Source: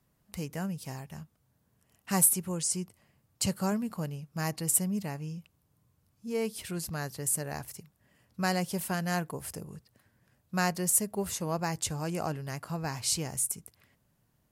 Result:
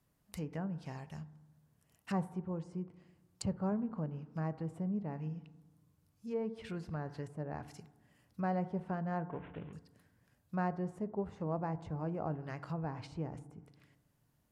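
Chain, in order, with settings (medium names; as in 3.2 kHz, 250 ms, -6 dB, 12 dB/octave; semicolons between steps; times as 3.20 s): 9.30–9.73 s: CVSD coder 16 kbps; FDN reverb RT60 1.1 s, low-frequency decay 1.3×, high-frequency decay 0.3×, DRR 13.5 dB; low-pass that closes with the level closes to 1 kHz, closed at -30 dBFS; trim -4 dB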